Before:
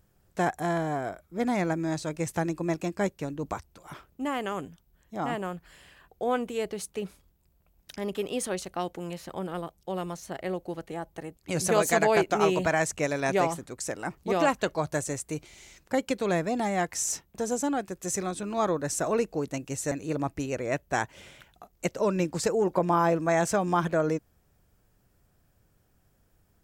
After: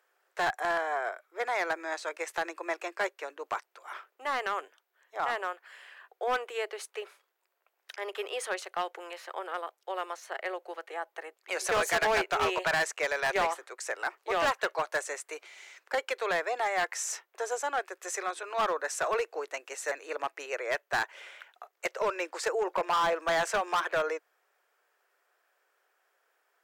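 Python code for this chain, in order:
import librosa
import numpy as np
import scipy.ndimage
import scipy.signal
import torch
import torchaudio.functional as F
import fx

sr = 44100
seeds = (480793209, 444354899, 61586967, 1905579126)

y = scipy.signal.sosfilt(scipy.signal.butter(8, 380.0, 'highpass', fs=sr, output='sos'), x)
y = fx.peak_eq(y, sr, hz=1600.0, db=14.5, octaves=2.5)
y = np.clip(y, -10.0 ** (-15.0 / 20.0), 10.0 ** (-15.0 / 20.0))
y = F.gain(torch.from_numpy(y), -8.0).numpy()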